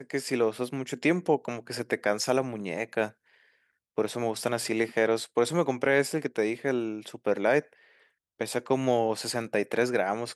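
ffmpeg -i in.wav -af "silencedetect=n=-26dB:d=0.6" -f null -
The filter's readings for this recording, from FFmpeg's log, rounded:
silence_start: 3.06
silence_end: 3.98 | silence_duration: 0.92
silence_start: 7.59
silence_end: 8.41 | silence_duration: 0.82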